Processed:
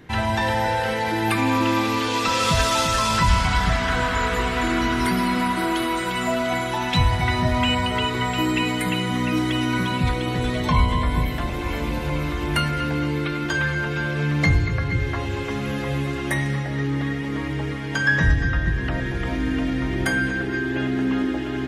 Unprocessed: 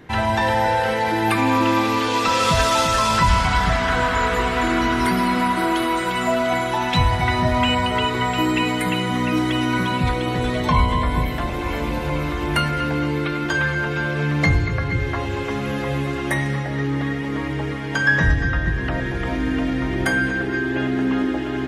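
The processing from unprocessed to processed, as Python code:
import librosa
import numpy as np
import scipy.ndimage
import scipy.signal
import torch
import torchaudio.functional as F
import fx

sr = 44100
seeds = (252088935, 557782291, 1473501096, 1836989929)

y = fx.peak_eq(x, sr, hz=750.0, db=-4.0, octaves=2.6)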